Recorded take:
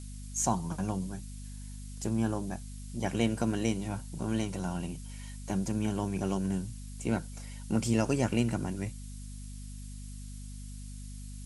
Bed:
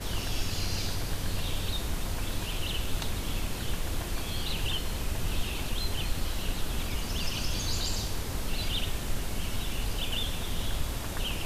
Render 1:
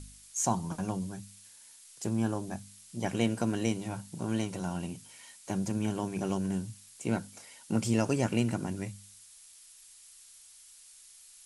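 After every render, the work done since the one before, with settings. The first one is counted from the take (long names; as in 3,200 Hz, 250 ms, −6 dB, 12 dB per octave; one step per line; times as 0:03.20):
hum removal 50 Hz, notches 5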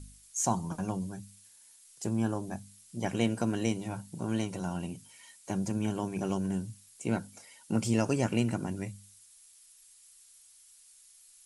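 broadband denoise 6 dB, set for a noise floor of −55 dBFS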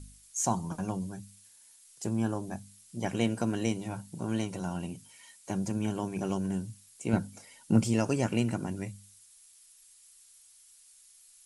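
0:07.13–0:07.84: low-shelf EQ 330 Hz +8.5 dB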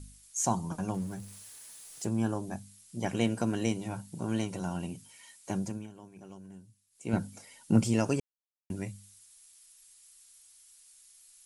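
0:00.94–0:02.05: converter with a step at zero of −47.5 dBFS
0:05.56–0:07.22: duck −17 dB, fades 0.32 s
0:08.20–0:08.70: silence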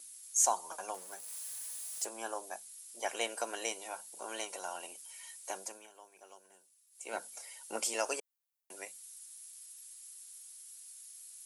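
high-pass filter 520 Hz 24 dB per octave
high-shelf EQ 8,600 Hz +11.5 dB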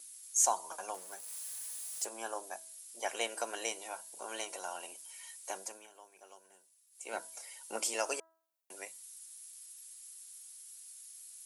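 low-shelf EQ 160 Hz −4.5 dB
hum removal 325.5 Hz, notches 6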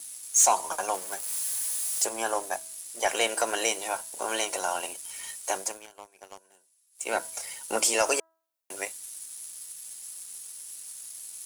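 leveller curve on the samples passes 2
in parallel at −2 dB: brickwall limiter −22 dBFS, peak gain reduction 7 dB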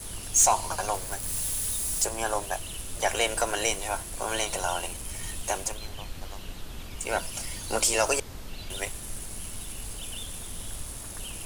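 mix in bed −8 dB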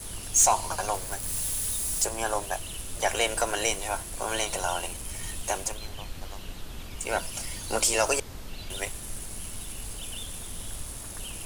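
no processing that can be heard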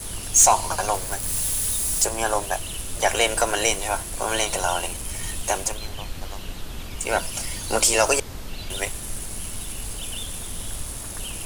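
level +5.5 dB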